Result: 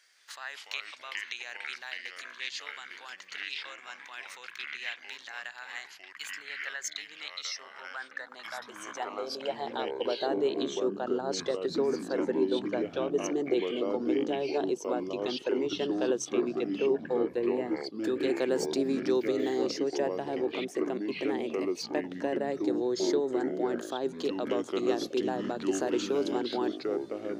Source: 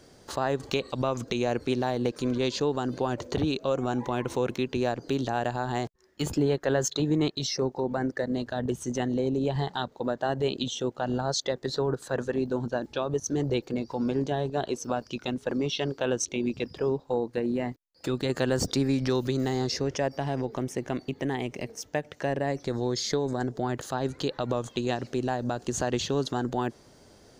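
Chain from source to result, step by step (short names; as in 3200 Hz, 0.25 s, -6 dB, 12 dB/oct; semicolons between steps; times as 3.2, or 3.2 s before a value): echoes that change speed 0.166 s, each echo -5 st, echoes 3; high-pass sweep 1900 Hz -> 350 Hz, 7.53–10.46; gain -6.5 dB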